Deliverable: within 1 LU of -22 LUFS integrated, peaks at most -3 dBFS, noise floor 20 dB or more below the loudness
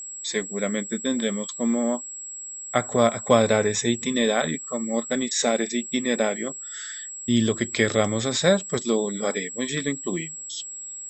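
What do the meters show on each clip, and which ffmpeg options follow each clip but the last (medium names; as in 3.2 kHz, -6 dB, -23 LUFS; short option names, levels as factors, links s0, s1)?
steady tone 7.7 kHz; tone level -34 dBFS; loudness -24.5 LUFS; peak level -3.5 dBFS; loudness target -22.0 LUFS
-> -af "bandreject=f=7700:w=30"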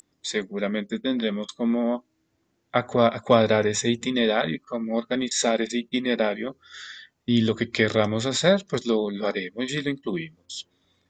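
steady tone not found; loudness -24.5 LUFS; peak level -4.0 dBFS; loudness target -22.0 LUFS
-> -af "volume=1.33,alimiter=limit=0.708:level=0:latency=1"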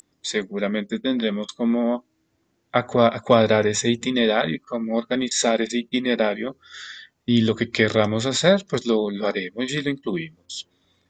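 loudness -22.0 LUFS; peak level -3.0 dBFS; noise floor -70 dBFS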